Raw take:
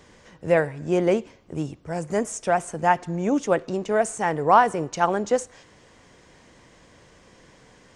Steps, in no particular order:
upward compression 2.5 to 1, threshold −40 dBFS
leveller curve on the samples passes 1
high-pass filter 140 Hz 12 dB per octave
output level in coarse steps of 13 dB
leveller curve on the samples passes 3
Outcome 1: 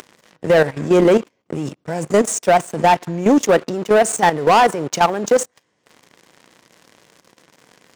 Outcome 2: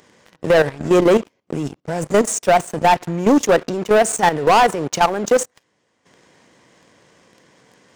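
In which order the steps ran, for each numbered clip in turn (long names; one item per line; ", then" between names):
upward compression, then second leveller curve on the samples, then output level in coarse steps, then high-pass filter, then first leveller curve on the samples
high-pass filter, then second leveller curve on the samples, then upward compression, then output level in coarse steps, then first leveller curve on the samples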